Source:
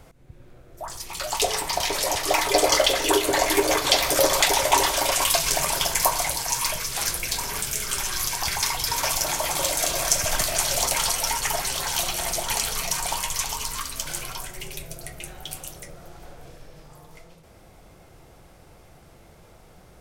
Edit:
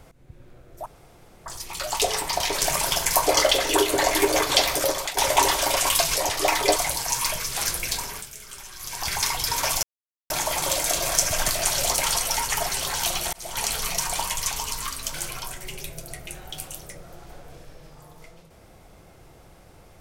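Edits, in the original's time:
0:00.86: splice in room tone 0.60 s
0:02.01–0:02.62: swap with 0:05.50–0:06.16
0:03.96–0:04.52: fade out, to −16 dB
0:07.32–0:08.56: duck −13.5 dB, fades 0.37 s
0:09.23: splice in silence 0.47 s
0:12.26–0:12.74: fade in equal-power

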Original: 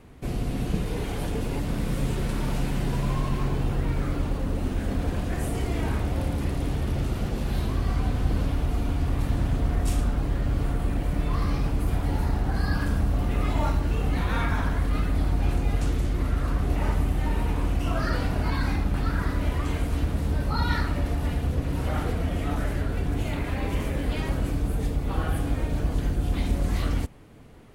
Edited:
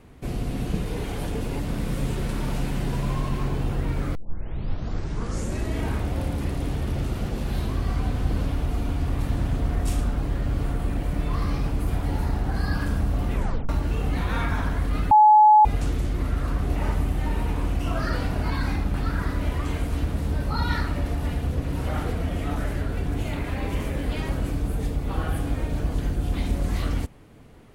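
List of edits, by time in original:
0:04.15: tape start 1.68 s
0:13.34: tape stop 0.35 s
0:15.11–0:15.65: beep over 852 Hz −10 dBFS

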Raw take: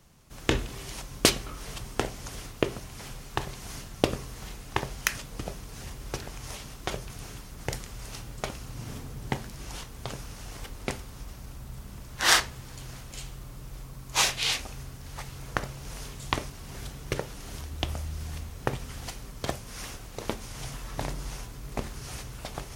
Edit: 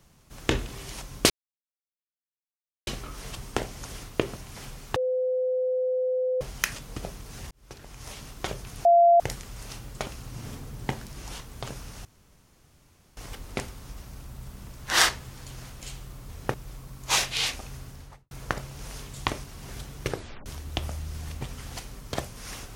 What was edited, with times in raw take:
0:01.30: splice in silence 1.57 s
0:03.39–0:04.84: beep over 510 Hz −23 dBFS
0:05.94–0:06.66: fade in
0:07.28–0:07.63: beep over 688 Hz −13.5 dBFS
0:10.48: splice in room tone 1.12 s
0:14.94–0:15.37: fade out and dull
0:17.16: tape stop 0.36 s
0:18.47–0:18.72: move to 0:13.60

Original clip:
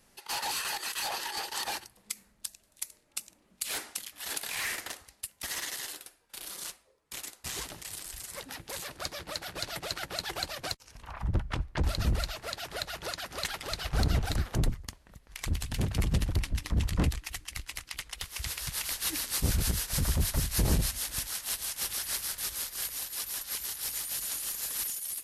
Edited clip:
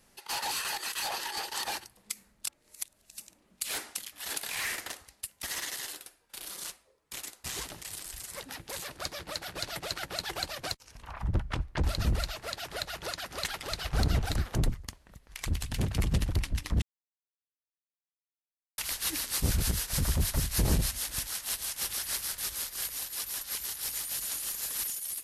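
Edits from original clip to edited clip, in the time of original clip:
0:02.47–0:03.18: reverse
0:16.82–0:18.78: silence

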